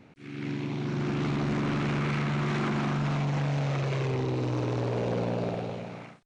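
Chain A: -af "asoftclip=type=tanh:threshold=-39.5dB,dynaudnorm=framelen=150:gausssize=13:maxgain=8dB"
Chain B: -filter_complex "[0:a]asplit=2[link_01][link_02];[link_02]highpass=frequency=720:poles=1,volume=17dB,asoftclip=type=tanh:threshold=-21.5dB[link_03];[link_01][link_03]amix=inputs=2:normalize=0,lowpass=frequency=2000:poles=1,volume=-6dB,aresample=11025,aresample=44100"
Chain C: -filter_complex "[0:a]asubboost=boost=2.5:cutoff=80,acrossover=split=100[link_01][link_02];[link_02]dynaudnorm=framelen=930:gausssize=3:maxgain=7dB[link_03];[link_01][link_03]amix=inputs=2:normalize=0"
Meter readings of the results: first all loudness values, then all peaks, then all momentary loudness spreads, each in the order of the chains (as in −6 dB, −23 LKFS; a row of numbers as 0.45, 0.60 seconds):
−34.0, −29.5, −24.5 LKFS; −31.5, −22.0, −11.0 dBFS; 8, 4, 10 LU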